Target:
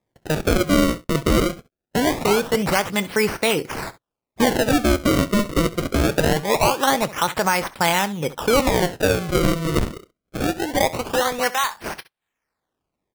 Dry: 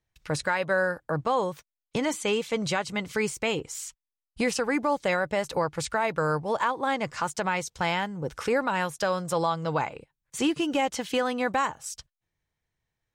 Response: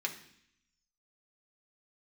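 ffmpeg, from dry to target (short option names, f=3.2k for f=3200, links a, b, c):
-af "asetnsamples=n=441:p=0,asendcmd='9.82 highpass f 450;11.5 highpass f 1100',highpass=140,acrusher=samples=30:mix=1:aa=0.000001:lfo=1:lforange=48:lforate=0.23,aecho=1:1:25|68:0.133|0.133,volume=8dB"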